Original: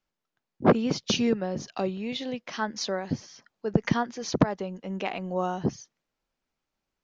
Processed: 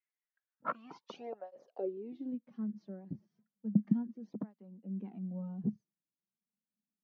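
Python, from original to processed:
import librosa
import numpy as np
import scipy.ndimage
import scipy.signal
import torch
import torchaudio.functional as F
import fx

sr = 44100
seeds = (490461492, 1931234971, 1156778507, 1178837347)

y = fx.filter_sweep_bandpass(x, sr, from_hz=2000.0, to_hz=210.0, start_s=0.22, end_s=2.64, q=6.8)
y = fx.flanger_cancel(y, sr, hz=0.33, depth_ms=4.6)
y = y * librosa.db_to_amplitude(2.5)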